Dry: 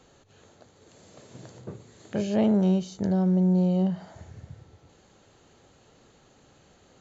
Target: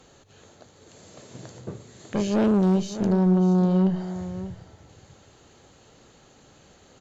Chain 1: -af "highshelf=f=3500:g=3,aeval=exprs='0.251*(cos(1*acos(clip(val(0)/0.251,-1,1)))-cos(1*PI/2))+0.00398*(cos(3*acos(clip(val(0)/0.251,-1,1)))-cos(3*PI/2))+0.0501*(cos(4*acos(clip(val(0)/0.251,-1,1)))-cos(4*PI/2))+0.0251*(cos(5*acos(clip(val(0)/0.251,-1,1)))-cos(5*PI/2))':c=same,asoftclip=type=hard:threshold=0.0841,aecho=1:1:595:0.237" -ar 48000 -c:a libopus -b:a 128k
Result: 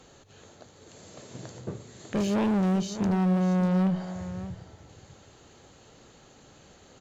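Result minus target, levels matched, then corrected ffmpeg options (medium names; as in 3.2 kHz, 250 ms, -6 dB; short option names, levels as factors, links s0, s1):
hard clipper: distortion +20 dB
-af "highshelf=f=3500:g=3,aeval=exprs='0.251*(cos(1*acos(clip(val(0)/0.251,-1,1)))-cos(1*PI/2))+0.00398*(cos(3*acos(clip(val(0)/0.251,-1,1)))-cos(3*PI/2))+0.0501*(cos(4*acos(clip(val(0)/0.251,-1,1)))-cos(4*PI/2))+0.0251*(cos(5*acos(clip(val(0)/0.251,-1,1)))-cos(5*PI/2))':c=same,asoftclip=type=hard:threshold=0.224,aecho=1:1:595:0.237" -ar 48000 -c:a libopus -b:a 128k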